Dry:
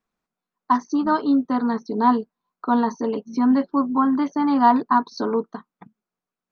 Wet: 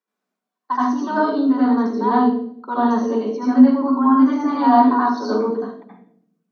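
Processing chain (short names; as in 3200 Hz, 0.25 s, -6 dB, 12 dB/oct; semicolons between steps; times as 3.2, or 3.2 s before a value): steep high-pass 200 Hz 36 dB/oct; reverb RT60 0.65 s, pre-delay 73 ms, DRR -7.5 dB; gain -7 dB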